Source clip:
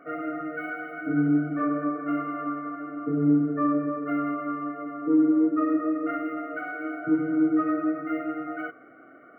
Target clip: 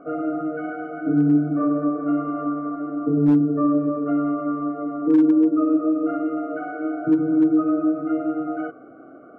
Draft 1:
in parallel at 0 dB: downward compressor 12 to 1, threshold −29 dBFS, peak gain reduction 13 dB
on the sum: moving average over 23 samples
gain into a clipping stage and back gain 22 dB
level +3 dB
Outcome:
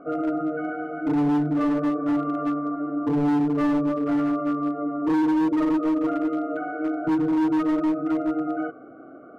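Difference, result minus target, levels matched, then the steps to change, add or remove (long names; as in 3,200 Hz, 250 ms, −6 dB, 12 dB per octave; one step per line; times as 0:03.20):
gain into a clipping stage and back: distortion +22 dB
change: gain into a clipping stage and back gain 13.5 dB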